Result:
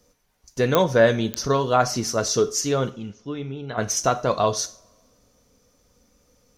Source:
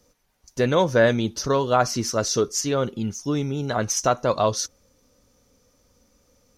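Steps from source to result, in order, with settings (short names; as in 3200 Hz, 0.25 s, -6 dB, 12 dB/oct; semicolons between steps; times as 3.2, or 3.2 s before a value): 2.9–3.78 ladder low-pass 3900 Hz, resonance 30%; two-slope reverb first 0.38 s, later 1.9 s, from -26 dB, DRR 9 dB; pops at 0.75/1.34, -4 dBFS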